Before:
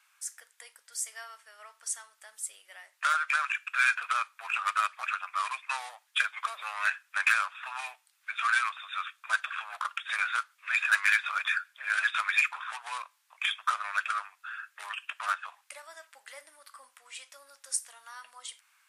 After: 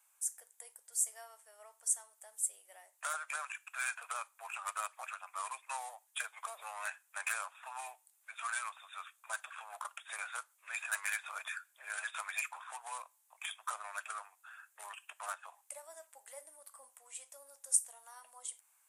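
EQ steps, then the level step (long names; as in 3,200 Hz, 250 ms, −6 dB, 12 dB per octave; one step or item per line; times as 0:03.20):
high-pass filter 630 Hz 6 dB per octave
flat-topped bell 2,500 Hz −16 dB 2.6 octaves
+3.0 dB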